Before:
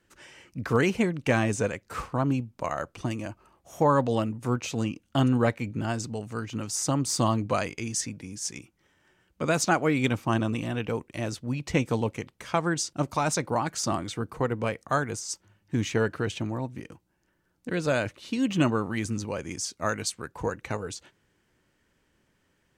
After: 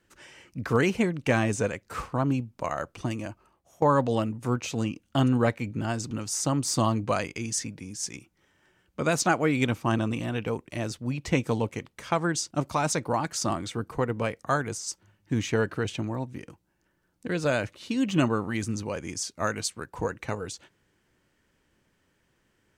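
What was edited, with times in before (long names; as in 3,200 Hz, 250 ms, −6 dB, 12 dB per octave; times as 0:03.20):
0:03.24–0:03.82: fade out, to −18 dB
0:06.11–0:06.53: remove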